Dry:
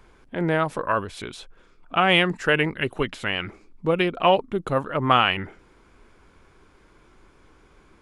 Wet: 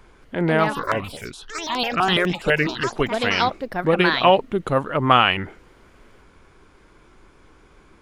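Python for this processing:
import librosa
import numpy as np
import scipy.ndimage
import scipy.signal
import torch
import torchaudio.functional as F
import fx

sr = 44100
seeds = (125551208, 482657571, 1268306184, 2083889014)

y = fx.echo_pitch(x, sr, ms=222, semitones=5, count=3, db_per_echo=-6.0)
y = fx.phaser_held(y, sr, hz=12.0, low_hz=560.0, high_hz=6400.0, at=(0.72, 2.86), fade=0.02)
y = y * librosa.db_to_amplitude(3.0)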